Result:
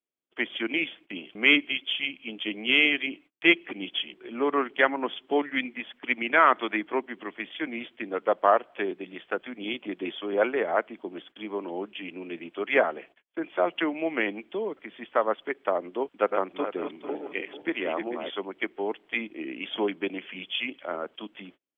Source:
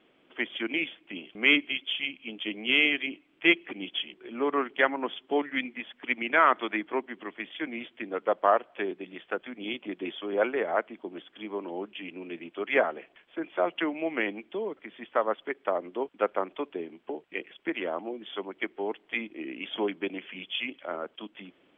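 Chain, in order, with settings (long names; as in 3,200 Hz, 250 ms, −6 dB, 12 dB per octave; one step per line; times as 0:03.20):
0:16.07–0:18.30: feedback delay that plays each chunk backwards 222 ms, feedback 49%, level −6 dB
noise gate −52 dBFS, range −36 dB
level +2 dB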